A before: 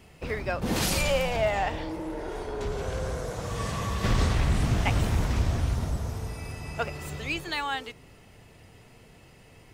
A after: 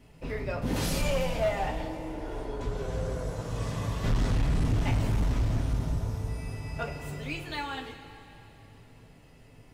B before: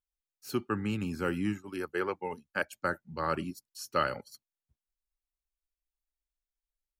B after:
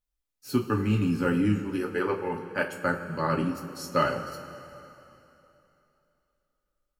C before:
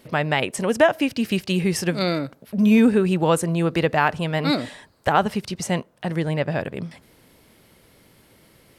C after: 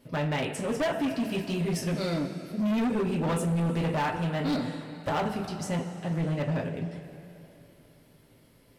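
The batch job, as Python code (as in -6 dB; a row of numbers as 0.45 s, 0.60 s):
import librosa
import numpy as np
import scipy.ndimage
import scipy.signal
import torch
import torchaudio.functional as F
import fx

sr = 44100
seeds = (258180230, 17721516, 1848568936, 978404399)

y = fx.low_shelf(x, sr, hz=440.0, db=7.5)
y = fx.rev_double_slope(y, sr, seeds[0], early_s=0.22, late_s=3.1, knee_db=-18, drr_db=-1.0)
y = np.clip(y, -10.0 ** (-12.0 / 20.0), 10.0 ** (-12.0 / 20.0))
y = y * 10.0 ** (-30 / 20.0) / np.sqrt(np.mean(np.square(y)))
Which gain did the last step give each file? -9.0 dB, -0.5 dB, -12.0 dB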